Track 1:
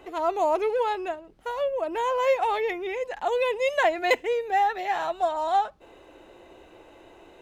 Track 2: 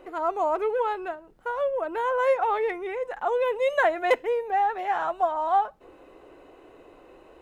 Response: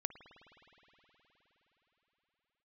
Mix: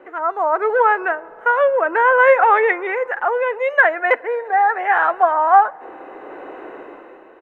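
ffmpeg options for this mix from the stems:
-filter_complex "[0:a]acrossover=split=3100[a][b];[b]acompressor=threshold=-49dB:ratio=4:attack=1:release=60[c];[a][c]amix=inputs=2:normalize=0,volume=-4dB[d];[1:a]equalizer=f=1.7k:t=o:w=0.72:g=8.5,volume=-1,adelay=0.9,volume=3dB,asplit=2[e][f];[f]volume=-14dB[g];[2:a]atrim=start_sample=2205[h];[g][h]afir=irnorm=-1:irlink=0[i];[d][e][i]amix=inputs=3:normalize=0,dynaudnorm=f=100:g=13:m=12dB,acrossover=split=190 2300:gain=0.0891 1 0.112[j][k][l];[j][k][l]amix=inputs=3:normalize=0"

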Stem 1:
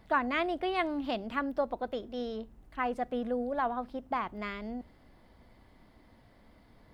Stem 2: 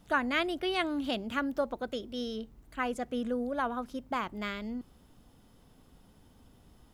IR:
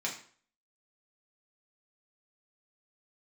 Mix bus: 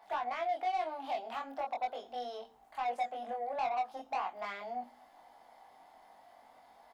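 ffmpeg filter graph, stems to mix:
-filter_complex "[0:a]alimiter=level_in=4.5dB:limit=-24dB:level=0:latency=1:release=177,volume=-4.5dB,highpass=f=770:t=q:w=6.6,volume=1dB[a];[1:a]bass=f=250:g=-15,treble=f=4k:g=2,acompressor=threshold=-40dB:ratio=6,adelay=24,volume=-8.5dB,asplit=2[b][c];[c]volume=-6dB[d];[2:a]atrim=start_sample=2205[e];[d][e]afir=irnorm=-1:irlink=0[f];[a][b][f]amix=inputs=3:normalize=0,asoftclip=type=tanh:threshold=-26.5dB,flanger=delay=20:depth=2.7:speed=0.41"

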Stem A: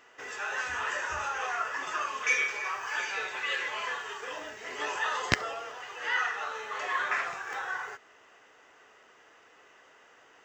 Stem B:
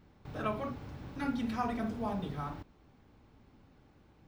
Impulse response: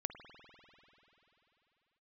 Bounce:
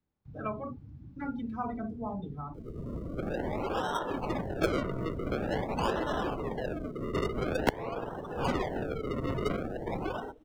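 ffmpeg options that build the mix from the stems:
-filter_complex "[0:a]equalizer=f=125:t=o:w=1:g=-12,equalizer=f=250:t=o:w=1:g=12,equalizer=f=1k:t=o:w=1:g=-8,equalizer=f=2k:t=o:w=1:g=-4,equalizer=f=4k:t=o:w=1:g=7,equalizer=f=8k:t=o:w=1:g=5,acrusher=samples=37:mix=1:aa=0.000001:lfo=1:lforange=37:lforate=0.47,adelay=2350,volume=2.5dB,asplit=2[a][b];[b]volume=-4dB[c];[1:a]volume=-0.5dB,asplit=2[d][e];[e]apad=whole_len=564359[f];[a][f]sidechaincompress=threshold=-55dB:ratio=8:attack=6.1:release=747[g];[2:a]atrim=start_sample=2205[h];[c][h]afir=irnorm=-1:irlink=0[i];[g][d][i]amix=inputs=3:normalize=0,afftdn=nr=23:nf=-37,acrossover=split=100|400|2100|5600[j][k][l][m][n];[j]acompressor=threshold=-39dB:ratio=4[o];[k]acompressor=threshold=-34dB:ratio=4[p];[l]acompressor=threshold=-27dB:ratio=4[q];[m]acompressor=threshold=-43dB:ratio=4[r];[n]acompressor=threshold=-51dB:ratio=4[s];[o][p][q][r][s]amix=inputs=5:normalize=0"

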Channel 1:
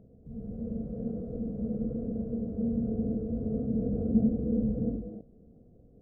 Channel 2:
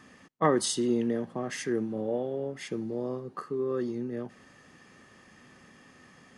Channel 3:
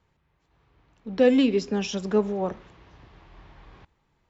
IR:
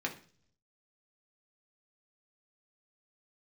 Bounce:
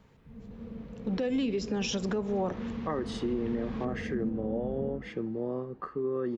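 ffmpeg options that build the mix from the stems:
-filter_complex "[0:a]volume=-13.5dB[a];[1:a]lowpass=2.4k,adelay=2450,volume=-6.5dB[b];[2:a]volume=0dB[c];[b][c]amix=inputs=2:normalize=0,acompressor=threshold=-32dB:ratio=4,volume=0dB[d];[a][d]amix=inputs=2:normalize=0,acontrast=64,alimiter=limit=-22.5dB:level=0:latency=1:release=68"

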